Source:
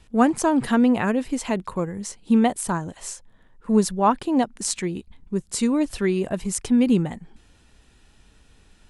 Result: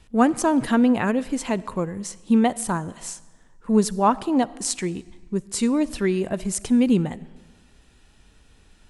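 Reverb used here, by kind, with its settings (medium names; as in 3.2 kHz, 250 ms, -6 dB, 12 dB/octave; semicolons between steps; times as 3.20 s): algorithmic reverb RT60 1.4 s, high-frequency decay 0.9×, pre-delay 15 ms, DRR 19.5 dB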